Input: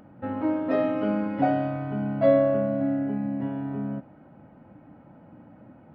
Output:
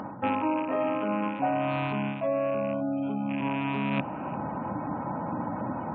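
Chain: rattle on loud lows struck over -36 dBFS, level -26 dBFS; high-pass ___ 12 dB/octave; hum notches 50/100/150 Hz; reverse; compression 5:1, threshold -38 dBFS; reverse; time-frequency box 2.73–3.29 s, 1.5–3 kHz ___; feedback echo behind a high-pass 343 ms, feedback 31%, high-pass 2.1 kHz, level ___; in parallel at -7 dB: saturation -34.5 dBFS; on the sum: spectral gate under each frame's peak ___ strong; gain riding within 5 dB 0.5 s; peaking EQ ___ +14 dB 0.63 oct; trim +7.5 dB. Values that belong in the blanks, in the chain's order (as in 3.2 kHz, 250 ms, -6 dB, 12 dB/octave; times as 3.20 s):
76 Hz, -10 dB, -22 dB, -35 dB, 1 kHz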